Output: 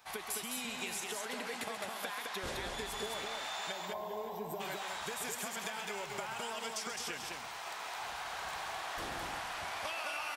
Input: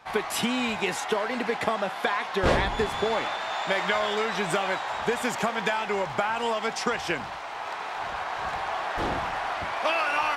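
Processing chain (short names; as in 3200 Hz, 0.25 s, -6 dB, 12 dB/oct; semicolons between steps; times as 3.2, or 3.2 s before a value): pre-emphasis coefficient 0.8; spectral gain 3.72–4.6, 1100–12000 Hz -21 dB; high shelf 8700 Hz +5.5 dB; compressor, threshold -39 dBFS, peak gain reduction 12.5 dB; tapped delay 0.134/0.211/0.569 s -9.5/-3.5/-18 dB; gain +1 dB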